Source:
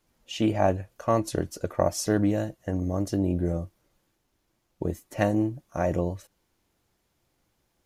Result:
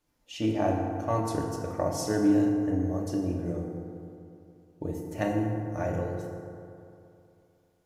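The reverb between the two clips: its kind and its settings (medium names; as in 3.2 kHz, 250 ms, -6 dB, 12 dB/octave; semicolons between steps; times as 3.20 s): FDN reverb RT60 2.7 s, high-frequency decay 0.4×, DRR -0.5 dB; trim -6.5 dB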